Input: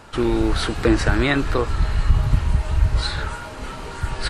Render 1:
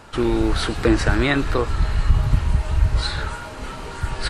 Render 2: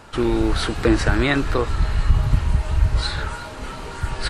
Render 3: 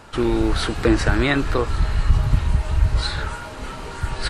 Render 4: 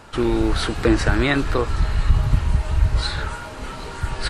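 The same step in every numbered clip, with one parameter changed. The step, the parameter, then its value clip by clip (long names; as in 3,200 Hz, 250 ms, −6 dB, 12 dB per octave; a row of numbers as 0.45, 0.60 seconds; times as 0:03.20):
delay with a high-pass on its return, delay time: 116, 359, 1,140, 770 milliseconds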